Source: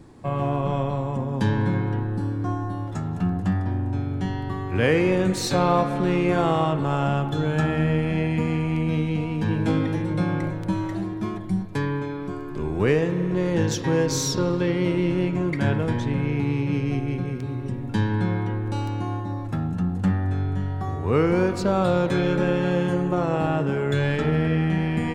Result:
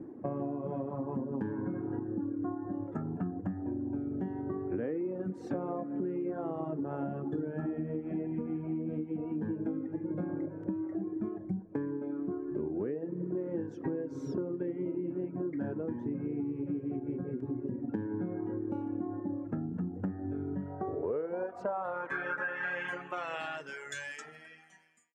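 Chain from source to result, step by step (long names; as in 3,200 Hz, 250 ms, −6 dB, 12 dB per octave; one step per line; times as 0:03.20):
fade-out on the ending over 1.22 s
reverb reduction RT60 1.3 s
0:00.86–0:03.41: dynamic equaliser 1,200 Hz, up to +6 dB, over −49 dBFS, Q 1.7
band-pass filter sweep 310 Hz → 6,600 Hz, 0:20.63–0:24.06
graphic EQ with 15 bands 630 Hz +4 dB, 1,600 Hz +7 dB, 4,000 Hz −11 dB
downward compressor 12 to 1, threshold −39 dBFS, peak gain reduction 20.5 dB
level +7.5 dB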